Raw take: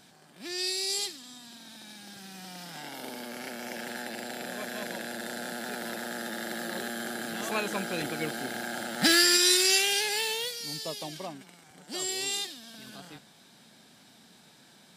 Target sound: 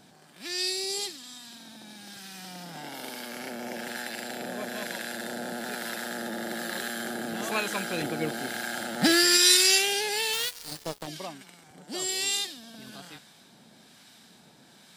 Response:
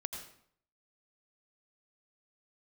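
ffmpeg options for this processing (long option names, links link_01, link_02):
-filter_complex "[0:a]asplit=3[link_01][link_02][link_03];[link_01]afade=type=out:start_time=10.32:duration=0.02[link_04];[link_02]acrusher=bits=4:mix=0:aa=0.5,afade=type=in:start_time=10.32:duration=0.02,afade=type=out:start_time=11.06:duration=0.02[link_05];[link_03]afade=type=in:start_time=11.06:duration=0.02[link_06];[link_04][link_05][link_06]amix=inputs=3:normalize=0,acrossover=split=1000[link_07][link_08];[link_07]aeval=exprs='val(0)*(1-0.5/2+0.5/2*cos(2*PI*1.1*n/s))':channel_layout=same[link_09];[link_08]aeval=exprs='val(0)*(1-0.5/2-0.5/2*cos(2*PI*1.1*n/s))':channel_layout=same[link_10];[link_09][link_10]amix=inputs=2:normalize=0,volume=4dB"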